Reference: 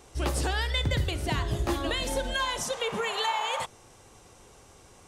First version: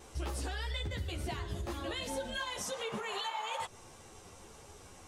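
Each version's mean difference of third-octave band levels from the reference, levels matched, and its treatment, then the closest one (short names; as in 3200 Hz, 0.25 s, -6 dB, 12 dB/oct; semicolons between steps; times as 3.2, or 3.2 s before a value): 4.0 dB: in parallel at +0.5 dB: limiter -27 dBFS, peak gain reduction 10 dB; on the sum: compressor 4:1, threshold -30 dBFS, peak gain reduction 9.5 dB; vibrato 0.92 Hz 6.8 cents; ensemble effect; gain -3 dB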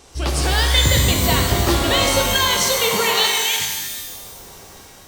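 7.0 dB: spectral delete 3.26–4.08, 340–2000 Hz; bell 4700 Hz +6.5 dB 1.2 oct; AGC gain up to 4 dB; shimmer reverb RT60 1.4 s, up +12 st, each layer -2 dB, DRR 3 dB; gain +4 dB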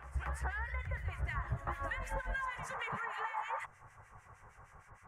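9.0 dB: EQ curve 140 Hz 0 dB, 300 Hz -18 dB, 1100 Hz +5 dB, 1900 Hz +7 dB, 3800 Hz -24 dB, 6500 Hz -14 dB; compressor, threshold -33 dBFS, peak gain reduction 11.5 dB; harmonic tremolo 6.5 Hz, depth 100%, crossover 1600 Hz; on a send: reverse echo 0.234 s -12.5 dB; on the sum: gain +2 dB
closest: first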